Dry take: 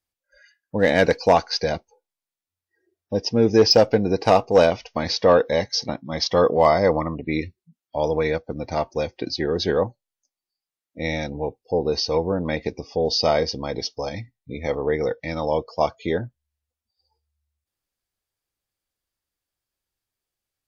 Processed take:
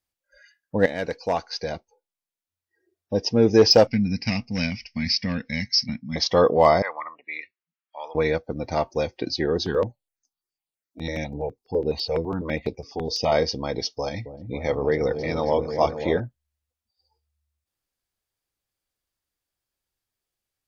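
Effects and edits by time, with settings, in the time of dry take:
0:00.86–0:03.21: fade in, from −13 dB
0:03.87–0:06.16: drawn EQ curve 140 Hz 0 dB, 240 Hz +4 dB, 380 Hz −26 dB, 1,300 Hz −18 dB, 2,200 Hz +6 dB, 3,600 Hz −11 dB, 5,200 Hz +7 dB, 7,600 Hz −25 dB
0:06.82–0:08.15: flat-topped band-pass 1,700 Hz, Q 1
0:09.58–0:13.32: step-sequenced phaser 12 Hz 530–6,000 Hz
0:13.83–0:16.20: echo whose low-pass opens from repeat to repeat 271 ms, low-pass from 400 Hz, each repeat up 1 octave, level −6 dB

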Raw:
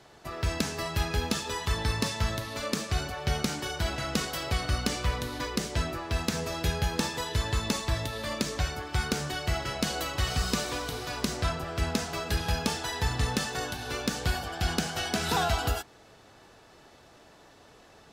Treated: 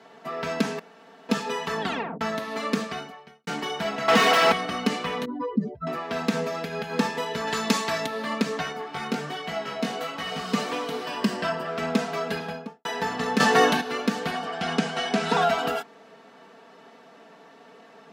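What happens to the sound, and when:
0:00.79–0:01.29: fill with room tone
0:01.81: tape stop 0.40 s
0:02.83–0:03.47: fade out quadratic
0:04.08–0:04.52: mid-hump overdrive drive 36 dB, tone 4,600 Hz, clips at −15 dBFS
0:05.25–0:05.87: expanding power law on the bin magnitudes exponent 3.3
0:06.43–0:06.93: downward compressor, threshold −29 dBFS
0:07.47–0:08.06: high-shelf EQ 2,200 Hz +9 dB
0:08.72–0:10.54: chorus effect 1.3 Hz, delay 17.5 ms, depth 4.3 ms
0:11.05–0:11.67: EQ curve with evenly spaced ripples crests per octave 1.3, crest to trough 8 dB
0:12.24–0:12.85: fade out and dull
0:13.40–0:13.81: clip gain +10.5 dB
0:14.31–0:15.42: low-pass filter 10,000 Hz 24 dB per octave
whole clip: high-pass filter 160 Hz 24 dB per octave; bass and treble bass −1 dB, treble −13 dB; comb filter 4.4 ms, depth 74%; level +4 dB

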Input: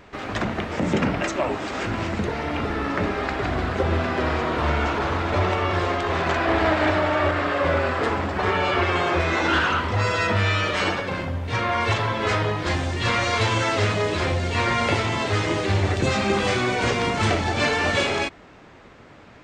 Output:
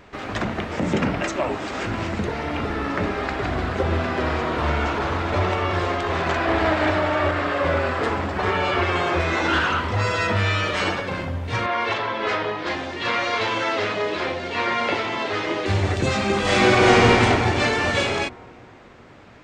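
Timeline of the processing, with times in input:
0:11.66–0:15.66: three-way crossover with the lows and the highs turned down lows −17 dB, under 220 Hz, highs −18 dB, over 5,400 Hz
0:16.41–0:17.09: thrown reverb, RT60 2.8 s, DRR −7 dB

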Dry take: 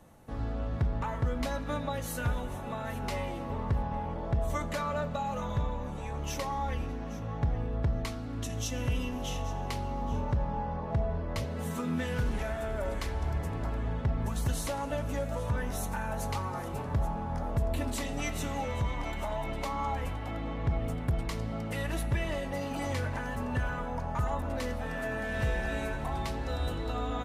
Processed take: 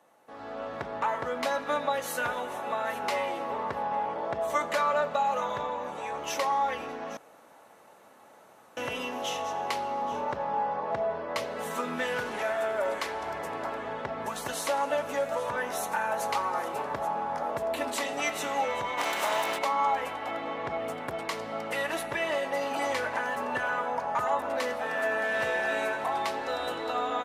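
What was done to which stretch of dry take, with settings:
0:07.17–0:08.77: fill with room tone
0:18.97–0:19.57: compressing power law on the bin magnitudes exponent 0.59
whole clip: high-pass filter 530 Hz 12 dB per octave; high-shelf EQ 3,500 Hz −7 dB; automatic gain control gain up to 9 dB

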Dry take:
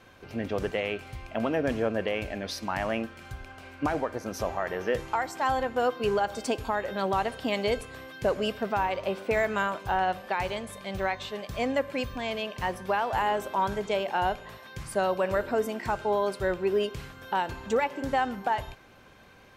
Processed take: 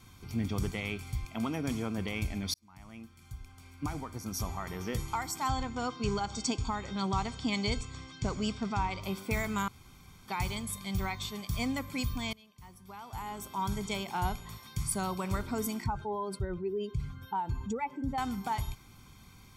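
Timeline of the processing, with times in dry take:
0:01.25–0:01.98: high-pass filter 180 Hz 6 dB per octave
0:02.54–0:04.89: fade in
0:05.49–0:09.02: Butterworth low-pass 7,700 Hz 48 dB per octave
0:09.68–0:10.28: fill with room tone
0:12.33–0:13.87: fade in quadratic, from −22.5 dB
0:15.84–0:18.18: expanding power law on the bin magnitudes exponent 1.6
whole clip: bass and treble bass +10 dB, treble +15 dB; comb filter 0.9 ms, depth 69%; level −8 dB

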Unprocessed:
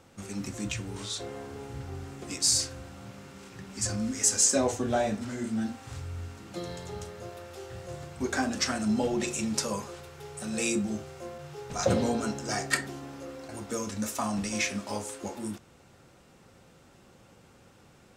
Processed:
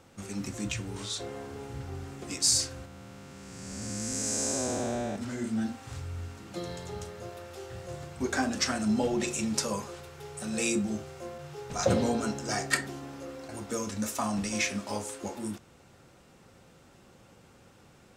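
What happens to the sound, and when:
0:02.85–0:05.16: spectrum smeared in time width 484 ms

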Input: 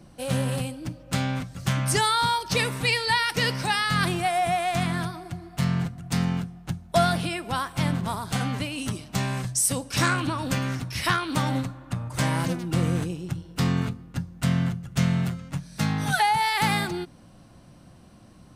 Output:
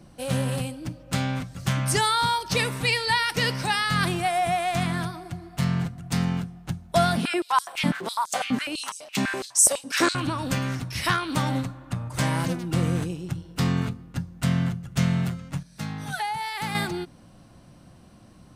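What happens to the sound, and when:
0:07.17–0:10.15: high-pass on a step sequencer 12 Hz 230–6,700 Hz
0:15.63–0:16.75: clip gain −7.5 dB

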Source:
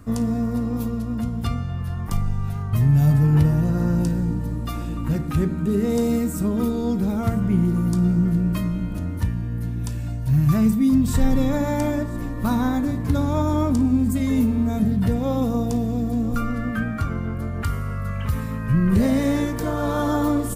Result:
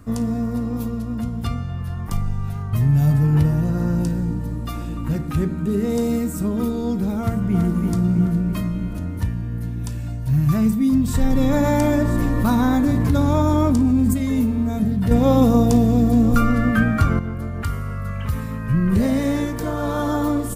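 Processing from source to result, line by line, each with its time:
0:07.21–0:07.61: delay throw 330 ms, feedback 60%, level −4 dB
0:11.30–0:14.14: envelope flattener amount 70%
0:15.11–0:17.19: clip gain +7.5 dB

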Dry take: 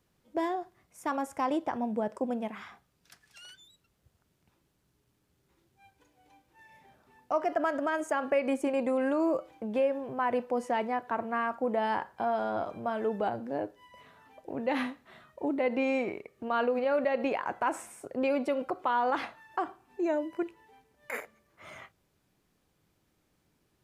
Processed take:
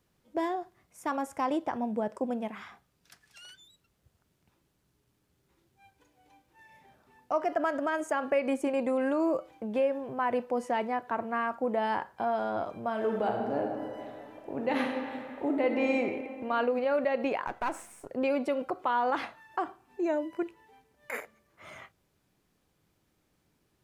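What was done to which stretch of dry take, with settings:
0:12.89–0:15.89: thrown reverb, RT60 2.5 s, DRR 2 dB
0:17.47–0:18.10: gain on one half-wave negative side −7 dB

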